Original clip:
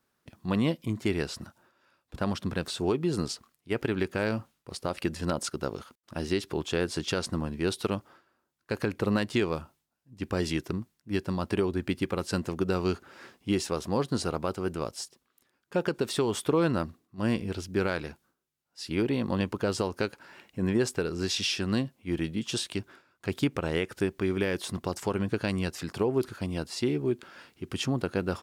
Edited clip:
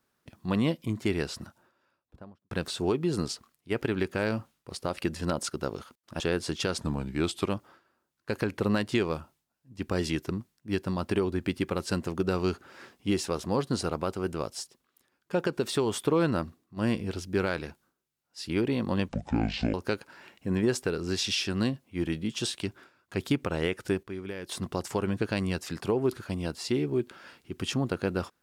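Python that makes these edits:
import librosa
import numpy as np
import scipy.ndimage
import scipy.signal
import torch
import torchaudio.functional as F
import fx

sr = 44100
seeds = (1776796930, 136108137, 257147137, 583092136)

y = fx.studio_fade_out(x, sr, start_s=1.42, length_s=1.09)
y = fx.edit(y, sr, fx.cut(start_s=6.2, length_s=0.48),
    fx.speed_span(start_s=7.29, length_s=0.6, speed=0.9),
    fx.speed_span(start_s=19.5, length_s=0.36, speed=0.55),
    fx.clip_gain(start_s=24.15, length_s=0.46, db=-9.5), tone=tone)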